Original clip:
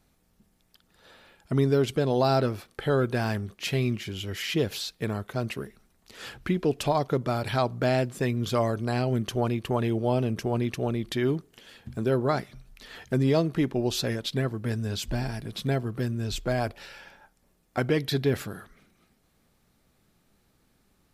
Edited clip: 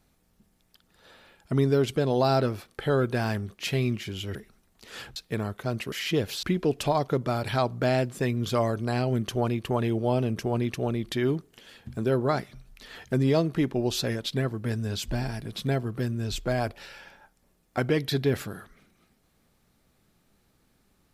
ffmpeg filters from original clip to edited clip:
-filter_complex "[0:a]asplit=5[a][b][c][d][e];[a]atrim=end=4.352[f];[b]atrim=start=5.618:end=6.432[g];[c]atrim=start=4.858:end=5.622[h];[d]atrim=start=4.348:end=4.862[i];[e]atrim=start=6.428[j];[f][g]acrossfade=d=0.004:c1=hsin:c2=hsin[k];[k][h]acrossfade=d=0.004:c1=hsin:c2=hsin[l];[l][i]acrossfade=d=0.004:c1=hsin:c2=hsin[m];[m][j]acrossfade=d=0.004:c1=hsin:c2=hsin"

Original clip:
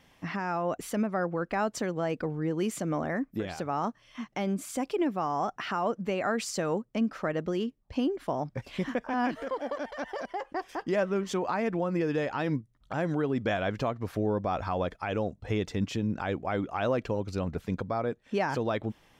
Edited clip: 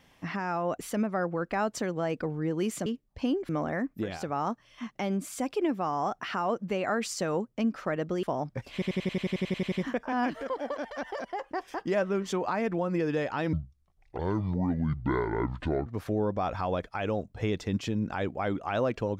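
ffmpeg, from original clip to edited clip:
-filter_complex "[0:a]asplit=17[a][b][c][d][e][f][g][h][i][j][k][l][m][n][o][p][q];[a]atrim=end=2.862[r];[b]atrim=start=7.598:end=8.232[s];[c]atrim=start=2.858:end=7.602[t];[d]atrim=start=8.228:end=8.822[u];[e]atrim=start=8.728:end=8.822[v];[f]atrim=start=8.728:end=8.822[w];[g]atrim=start=8.728:end=8.822[x];[h]atrim=start=8.728:end=8.822[y];[i]atrim=start=8.728:end=8.822[z];[j]atrim=start=8.728:end=8.822[aa];[k]atrim=start=8.728:end=8.822[ab];[l]atrim=start=8.728:end=8.822[ac];[m]atrim=start=8.728:end=8.822[ad];[n]atrim=start=8.728:end=8.822[ae];[o]atrim=start=8.728:end=12.544[af];[p]atrim=start=12.54:end=13.94,asetpts=PTS-STARTPTS,asetrate=26460,aresample=44100[ag];[q]atrim=start=13.936[ah];[r][s]acrossfade=d=0.004:c1=hsin:c2=hsin[ai];[ai][t]acrossfade=d=0.004:c1=hsin:c2=hsin[aj];[aj][u]acrossfade=d=0.004:c1=hsin:c2=hsin[ak];[ak][v]acrossfade=d=0.004:c1=hsin:c2=hsin[al];[al][w]acrossfade=d=0.004:c1=hsin:c2=hsin[am];[am][x]acrossfade=d=0.004:c1=hsin:c2=hsin[an];[an][y]acrossfade=d=0.004:c1=hsin:c2=hsin[ao];[ao][z]acrossfade=d=0.004:c1=hsin:c2=hsin[ap];[ap][aa]acrossfade=d=0.004:c1=hsin:c2=hsin[aq];[aq][ab]acrossfade=d=0.004:c1=hsin:c2=hsin[ar];[ar][ac]acrossfade=d=0.004:c1=hsin:c2=hsin[as];[as][ad]acrossfade=d=0.004:c1=hsin:c2=hsin[at];[at][ae]acrossfade=d=0.004:c1=hsin:c2=hsin[au];[au][af]acrossfade=d=0.004:c1=hsin:c2=hsin[av];[av][ag]acrossfade=d=0.004:c1=hsin:c2=hsin[aw];[aw][ah]acrossfade=d=0.004:c1=hsin:c2=hsin"

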